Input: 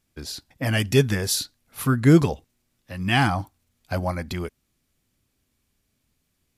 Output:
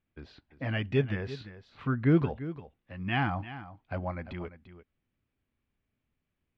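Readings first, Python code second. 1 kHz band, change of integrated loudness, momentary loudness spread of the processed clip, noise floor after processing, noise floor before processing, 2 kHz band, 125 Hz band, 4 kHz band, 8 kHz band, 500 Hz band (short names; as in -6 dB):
-8.5 dB, -9.0 dB, 20 LU, -84 dBFS, -73 dBFS, -8.5 dB, -8.5 dB, -15.0 dB, under -35 dB, -8.5 dB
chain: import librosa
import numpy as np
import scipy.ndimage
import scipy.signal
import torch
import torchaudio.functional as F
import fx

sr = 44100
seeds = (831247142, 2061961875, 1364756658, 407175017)

p1 = scipy.signal.sosfilt(scipy.signal.butter(4, 2900.0, 'lowpass', fs=sr, output='sos'), x)
p2 = p1 + fx.echo_single(p1, sr, ms=344, db=-14.0, dry=0)
y = p2 * librosa.db_to_amplitude(-8.5)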